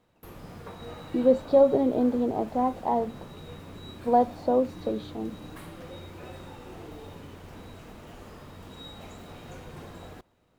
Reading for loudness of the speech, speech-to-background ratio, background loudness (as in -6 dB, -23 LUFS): -25.0 LUFS, 19.5 dB, -44.5 LUFS